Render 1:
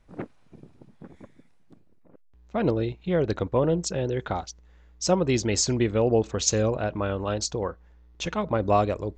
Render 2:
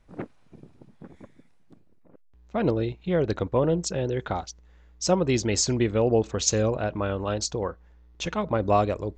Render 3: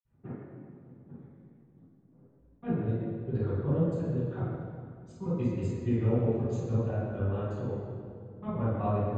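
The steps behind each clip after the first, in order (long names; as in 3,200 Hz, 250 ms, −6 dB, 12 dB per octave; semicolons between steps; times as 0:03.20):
no processing that can be heard
gate pattern "x.x.x..xxx.xx." 163 BPM −60 dB; moving average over 8 samples; convolution reverb RT60 2.3 s, pre-delay 46 ms; level +1.5 dB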